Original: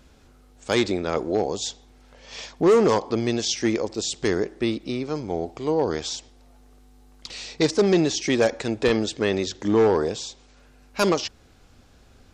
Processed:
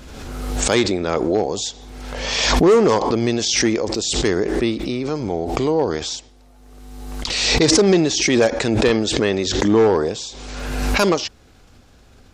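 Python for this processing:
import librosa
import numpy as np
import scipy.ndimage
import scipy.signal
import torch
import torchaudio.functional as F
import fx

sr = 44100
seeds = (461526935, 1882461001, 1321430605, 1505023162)

y = fx.pre_swell(x, sr, db_per_s=33.0)
y = y * librosa.db_to_amplitude(3.5)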